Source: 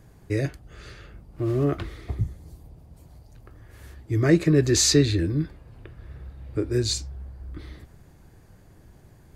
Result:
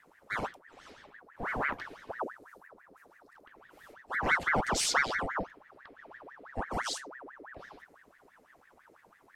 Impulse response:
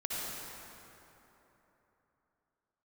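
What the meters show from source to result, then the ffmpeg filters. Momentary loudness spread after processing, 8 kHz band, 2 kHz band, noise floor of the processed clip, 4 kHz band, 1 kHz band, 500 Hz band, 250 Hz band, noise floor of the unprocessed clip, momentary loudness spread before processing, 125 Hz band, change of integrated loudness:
22 LU, −11.0 dB, +5.0 dB, −63 dBFS, −9.5 dB, +10.0 dB, −13.0 dB, −18.5 dB, −53 dBFS, 22 LU, −22.5 dB, −9.0 dB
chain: -af "bandreject=frequency=60:width_type=h:width=6,bandreject=frequency=120:width_type=h:width=6,bandreject=frequency=180:width_type=h:width=6,aeval=exprs='val(0)*sin(2*PI*1100*n/s+1100*0.7/6*sin(2*PI*6*n/s))':channel_layout=same,volume=-7dB"

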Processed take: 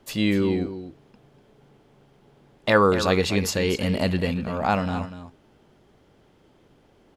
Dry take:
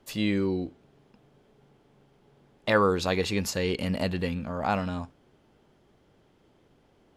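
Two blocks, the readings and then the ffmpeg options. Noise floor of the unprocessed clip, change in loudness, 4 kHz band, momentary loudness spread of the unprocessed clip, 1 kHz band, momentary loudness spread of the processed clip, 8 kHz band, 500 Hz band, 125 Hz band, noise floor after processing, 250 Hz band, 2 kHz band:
−64 dBFS, +5.0 dB, +5.0 dB, 12 LU, +5.0 dB, 13 LU, +5.0 dB, +5.0 dB, +5.0 dB, −59 dBFS, +5.0 dB, +5.0 dB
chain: -af "aecho=1:1:244:0.266,volume=4.5dB"

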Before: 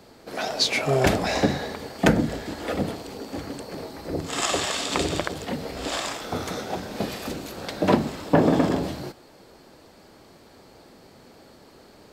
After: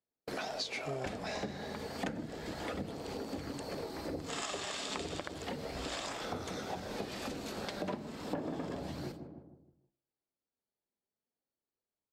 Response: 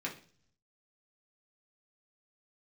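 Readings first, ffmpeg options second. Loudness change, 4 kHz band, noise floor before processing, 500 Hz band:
−14.0 dB, −13.0 dB, −52 dBFS, −14.0 dB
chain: -filter_complex "[0:a]agate=range=-48dB:threshold=-40dB:ratio=16:detection=peak,acrossover=split=10000[link_01][link_02];[link_02]acompressor=threshold=-60dB:ratio=4:attack=1:release=60[link_03];[link_01][link_03]amix=inputs=2:normalize=0,asplit=2[link_04][link_05];[link_05]adelay=155,lowpass=frequency=1000:poles=1,volume=-18dB,asplit=2[link_06][link_07];[link_07]adelay=155,lowpass=frequency=1000:poles=1,volume=0.55,asplit=2[link_08][link_09];[link_09]adelay=155,lowpass=frequency=1000:poles=1,volume=0.55,asplit=2[link_10][link_11];[link_11]adelay=155,lowpass=frequency=1000:poles=1,volume=0.55,asplit=2[link_12][link_13];[link_13]adelay=155,lowpass=frequency=1000:poles=1,volume=0.55[link_14];[link_04][link_06][link_08][link_10][link_12][link_14]amix=inputs=6:normalize=0,asplit=2[link_15][link_16];[1:a]atrim=start_sample=2205,adelay=91[link_17];[link_16][link_17]afir=irnorm=-1:irlink=0,volume=-25dB[link_18];[link_15][link_18]amix=inputs=2:normalize=0,aphaser=in_gain=1:out_gain=1:delay=5:decay=0.23:speed=0.32:type=sinusoidal,acompressor=threshold=-37dB:ratio=6,bandreject=frequency=56.97:width_type=h:width=4,bandreject=frequency=113.94:width_type=h:width=4,bandreject=frequency=170.91:width_type=h:width=4,bandreject=frequency=227.88:width_type=h:width=4,bandreject=frequency=284.85:width_type=h:width=4,bandreject=frequency=341.82:width_type=h:width=4"

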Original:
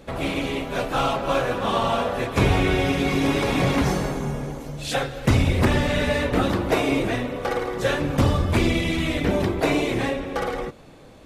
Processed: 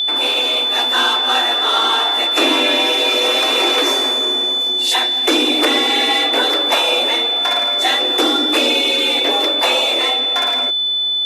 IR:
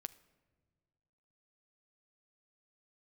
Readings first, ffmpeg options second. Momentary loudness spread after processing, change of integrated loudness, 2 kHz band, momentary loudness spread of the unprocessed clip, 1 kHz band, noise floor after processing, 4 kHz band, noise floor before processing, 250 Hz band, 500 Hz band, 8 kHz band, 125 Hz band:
2 LU, +9.5 dB, +7.5 dB, 7 LU, +7.0 dB, −18 dBFS, +21.5 dB, −46 dBFS, −0.5 dB, +3.0 dB, +10.0 dB, below −40 dB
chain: -af "afreqshift=220,aeval=exprs='val(0)+0.0631*sin(2*PI*3500*n/s)':channel_layout=same,tiltshelf=frequency=1200:gain=-5.5,volume=4.5dB"

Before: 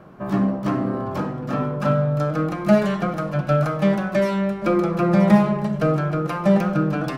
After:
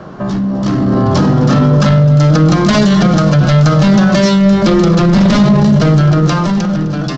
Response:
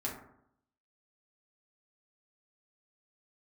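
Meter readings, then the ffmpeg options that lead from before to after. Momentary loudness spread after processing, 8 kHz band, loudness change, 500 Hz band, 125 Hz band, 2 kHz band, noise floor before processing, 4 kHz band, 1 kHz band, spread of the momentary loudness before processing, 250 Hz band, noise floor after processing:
6 LU, can't be measured, +11.0 dB, +6.5 dB, +14.0 dB, +9.5 dB, −31 dBFS, +19.0 dB, +8.0 dB, 8 LU, +11.0 dB, −17 dBFS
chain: -filter_complex "[0:a]aresample=16000,aeval=exprs='0.708*sin(PI/2*3.55*val(0)/0.708)':channel_layout=same,aresample=44100,equalizer=frequency=2400:width_type=o:width=0.31:gain=-6.5,acrossover=split=250|3000[link_01][link_02][link_03];[link_02]acompressor=threshold=-23dB:ratio=3[link_04];[link_01][link_04][link_03]amix=inputs=3:normalize=0,asoftclip=type=tanh:threshold=-2.5dB,alimiter=limit=-11.5dB:level=0:latency=1:release=14,equalizer=frequency=4800:width_type=o:width=1.3:gain=6,dynaudnorm=framelen=100:gausssize=17:maxgain=11.5dB,aecho=1:1:258|516|774|1032:0.126|0.0667|0.0354|0.0187"

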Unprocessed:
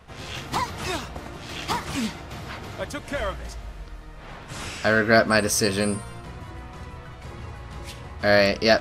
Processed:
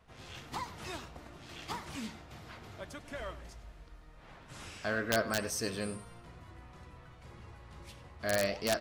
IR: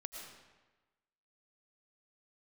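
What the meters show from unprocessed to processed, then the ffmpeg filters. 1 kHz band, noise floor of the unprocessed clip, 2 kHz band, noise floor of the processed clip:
−13.0 dB, −42 dBFS, −14.0 dB, −55 dBFS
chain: -filter_complex "[0:a]flanger=delay=2.9:depth=8.9:regen=86:speed=1.6:shape=sinusoidal,asplit=2[link_01][link_02];[link_02]adelay=99.13,volume=-16dB,highshelf=frequency=4000:gain=-2.23[link_03];[link_01][link_03]amix=inputs=2:normalize=0,aeval=exprs='(mod(3.35*val(0)+1,2)-1)/3.35':channel_layout=same,volume=-9dB"

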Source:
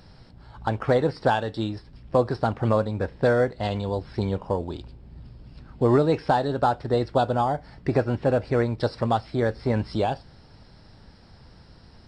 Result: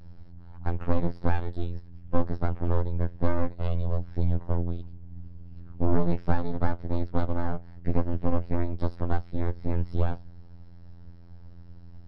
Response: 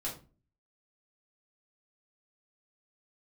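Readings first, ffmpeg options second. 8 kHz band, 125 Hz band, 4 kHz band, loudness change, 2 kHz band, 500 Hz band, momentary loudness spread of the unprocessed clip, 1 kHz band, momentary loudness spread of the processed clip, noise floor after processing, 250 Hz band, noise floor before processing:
can't be measured, −1.5 dB, −16.0 dB, −6.0 dB, −10.5 dB, −11.0 dB, 8 LU, −10.5 dB, 20 LU, −45 dBFS, −4.0 dB, −51 dBFS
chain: -af "afftfilt=real='hypot(re,im)*cos(PI*b)':imag='0':win_size=2048:overlap=0.75,aeval=exprs='max(val(0),0)':channel_layout=same,aemphasis=mode=reproduction:type=riaa,volume=-5.5dB"

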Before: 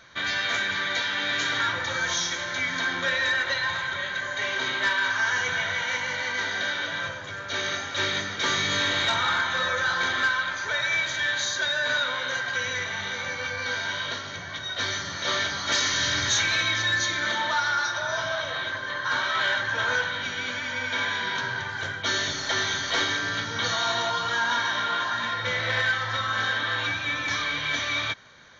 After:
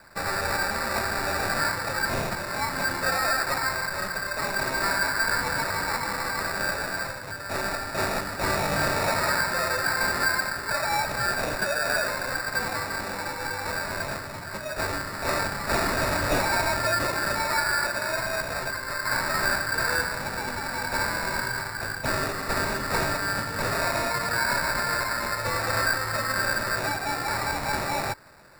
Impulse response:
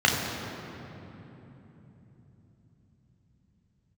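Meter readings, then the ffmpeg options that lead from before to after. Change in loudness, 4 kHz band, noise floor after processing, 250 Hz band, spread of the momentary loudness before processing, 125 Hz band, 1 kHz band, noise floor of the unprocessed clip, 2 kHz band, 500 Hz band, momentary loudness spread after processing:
−1.0 dB, −6.0 dB, −35 dBFS, +5.0 dB, 6 LU, +4.0 dB, +2.5 dB, −35 dBFS, −2.0 dB, +4.5 dB, 6 LU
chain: -af "acrusher=samples=14:mix=1:aa=0.000001"

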